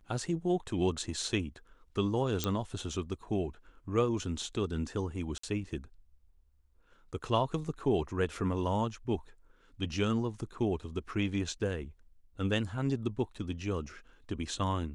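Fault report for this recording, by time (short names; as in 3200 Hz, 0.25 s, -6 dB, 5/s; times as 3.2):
2.44 pop -14 dBFS
5.38–5.43 gap 54 ms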